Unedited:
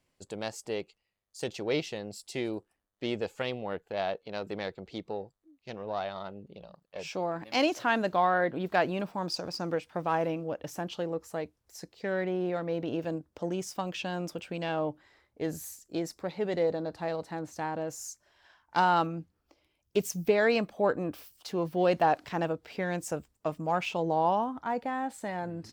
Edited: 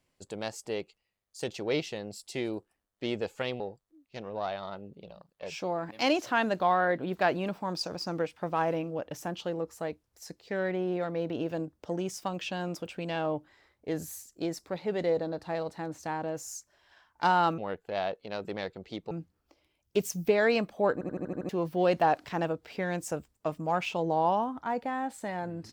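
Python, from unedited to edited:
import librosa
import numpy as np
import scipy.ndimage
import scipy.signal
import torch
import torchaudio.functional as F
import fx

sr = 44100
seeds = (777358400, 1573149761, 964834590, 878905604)

y = fx.edit(x, sr, fx.move(start_s=3.6, length_s=1.53, to_s=19.11),
    fx.stutter_over(start_s=20.93, slice_s=0.08, count=7), tone=tone)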